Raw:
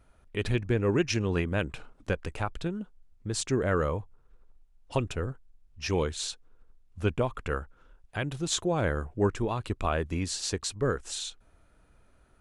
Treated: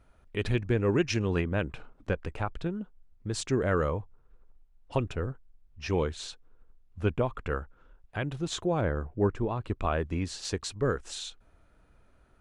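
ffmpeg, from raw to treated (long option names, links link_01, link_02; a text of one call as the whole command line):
ffmpeg -i in.wav -af "asetnsamples=nb_out_samples=441:pad=0,asendcmd='1.41 lowpass f 2400;3.27 lowpass f 5400;3.9 lowpass f 2600;8.81 lowpass f 1200;9.69 lowpass f 2700;10.45 lowpass f 4700',lowpass=frequency=5900:poles=1" out.wav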